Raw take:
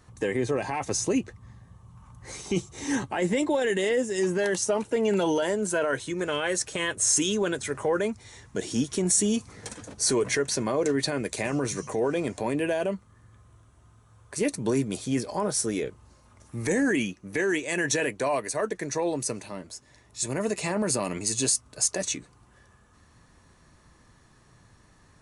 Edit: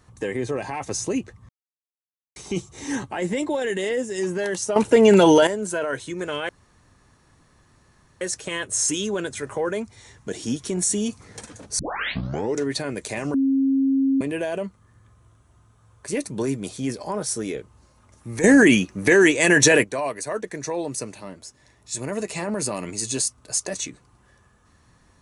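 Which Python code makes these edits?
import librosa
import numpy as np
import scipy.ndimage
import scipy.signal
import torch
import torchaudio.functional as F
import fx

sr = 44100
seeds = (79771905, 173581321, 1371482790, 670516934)

y = fx.edit(x, sr, fx.silence(start_s=1.49, length_s=0.87),
    fx.clip_gain(start_s=4.76, length_s=0.71, db=11.0),
    fx.insert_room_tone(at_s=6.49, length_s=1.72),
    fx.tape_start(start_s=10.07, length_s=0.84),
    fx.bleep(start_s=11.62, length_s=0.87, hz=270.0, db=-16.5),
    fx.clip_gain(start_s=16.72, length_s=1.4, db=11.0), tone=tone)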